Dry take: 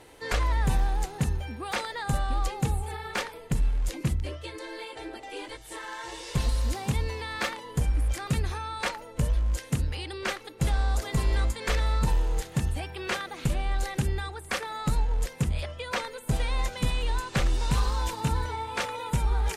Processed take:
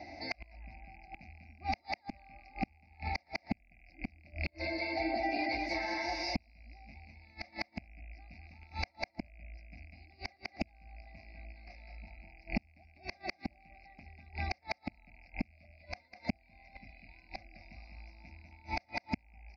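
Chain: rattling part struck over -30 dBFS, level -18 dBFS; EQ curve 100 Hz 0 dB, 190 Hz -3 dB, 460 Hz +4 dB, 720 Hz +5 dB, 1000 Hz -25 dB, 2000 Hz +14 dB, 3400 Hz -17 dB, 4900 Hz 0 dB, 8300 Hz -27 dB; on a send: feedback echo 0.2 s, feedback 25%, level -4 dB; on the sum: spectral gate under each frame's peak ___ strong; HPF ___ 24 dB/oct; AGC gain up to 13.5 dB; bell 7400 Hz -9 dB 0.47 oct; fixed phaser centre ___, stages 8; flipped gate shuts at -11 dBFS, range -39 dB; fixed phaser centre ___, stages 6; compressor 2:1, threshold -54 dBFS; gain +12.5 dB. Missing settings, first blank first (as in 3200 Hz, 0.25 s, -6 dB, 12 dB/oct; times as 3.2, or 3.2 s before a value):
-45 dB, 65 Hz, 2100 Hz, 490 Hz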